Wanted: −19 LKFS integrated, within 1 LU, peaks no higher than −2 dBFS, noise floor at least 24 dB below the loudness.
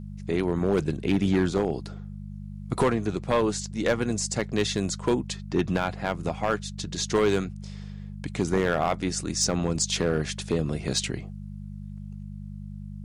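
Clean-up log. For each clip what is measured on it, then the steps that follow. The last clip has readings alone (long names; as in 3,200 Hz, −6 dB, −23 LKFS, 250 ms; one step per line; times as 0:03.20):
share of clipped samples 0.8%; peaks flattened at −15.5 dBFS; mains hum 50 Hz; hum harmonics up to 200 Hz; level of the hum −35 dBFS; integrated loudness −27.0 LKFS; sample peak −15.5 dBFS; target loudness −19.0 LKFS
→ clipped peaks rebuilt −15.5 dBFS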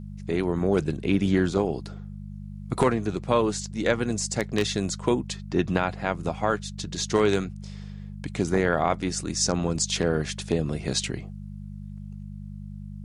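share of clipped samples 0.0%; mains hum 50 Hz; hum harmonics up to 200 Hz; level of the hum −35 dBFS
→ hum removal 50 Hz, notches 4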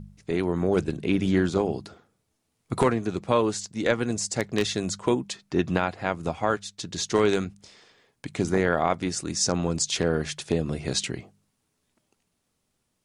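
mains hum none found; integrated loudness −26.5 LKFS; sample peak −7.0 dBFS; target loudness −19.0 LKFS
→ level +7.5 dB
brickwall limiter −2 dBFS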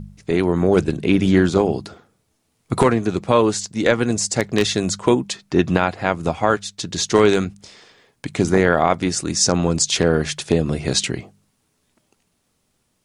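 integrated loudness −19.0 LKFS; sample peak −2.0 dBFS; background noise floor −68 dBFS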